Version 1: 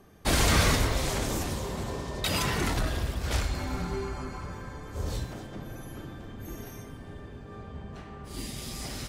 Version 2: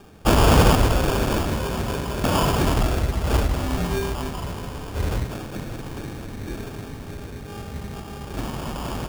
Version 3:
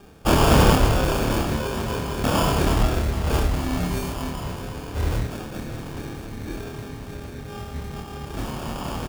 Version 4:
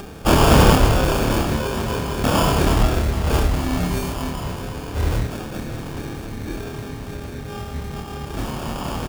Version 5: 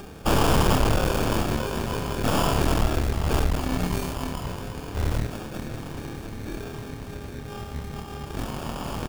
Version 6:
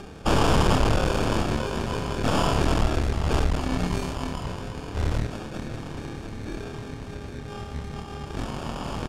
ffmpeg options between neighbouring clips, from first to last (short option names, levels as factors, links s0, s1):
-af "acrusher=samples=22:mix=1:aa=0.000001,volume=2.51"
-filter_complex "[0:a]asplit=2[s0][s1];[s1]adelay=27,volume=0.708[s2];[s0][s2]amix=inputs=2:normalize=0,volume=0.794"
-af "acompressor=mode=upward:threshold=0.0316:ratio=2.5,volume=1.41"
-af "aeval=exprs='(tanh(7.08*val(0)+0.8)-tanh(0.8))/7.08':c=same"
-af "lowpass=7900"